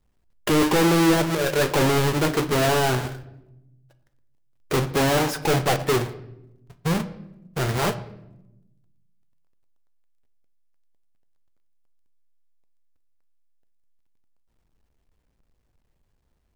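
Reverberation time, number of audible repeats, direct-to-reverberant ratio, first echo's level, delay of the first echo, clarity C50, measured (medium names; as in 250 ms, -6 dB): 0.90 s, no echo, 10.5 dB, no echo, no echo, 14.5 dB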